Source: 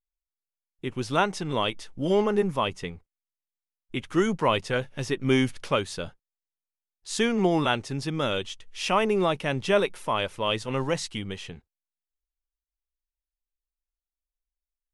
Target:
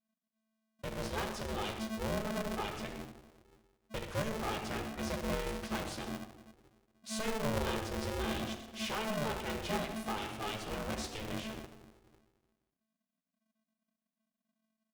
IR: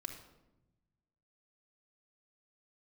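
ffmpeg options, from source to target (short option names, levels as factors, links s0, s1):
-filter_complex "[0:a]asplit=3[s0][s1][s2];[s0]afade=t=out:st=6.06:d=0.02[s3];[s1]lowshelf=f=210:g=7.5,afade=t=in:st=6.06:d=0.02,afade=t=out:st=8.39:d=0.02[s4];[s2]afade=t=in:st=8.39:d=0.02[s5];[s3][s4][s5]amix=inputs=3:normalize=0,acompressor=threshold=0.02:ratio=1.5,asoftclip=type=tanh:threshold=0.0473,aecho=1:1:124:0.2[s6];[1:a]atrim=start_sample=2205[s7];[s6][s7]afir=irnorm=-1:irlink=0,aeval=exprs='val(0)*sgn(sin(2*PI*220*n/s))':c=same,volume=0.75"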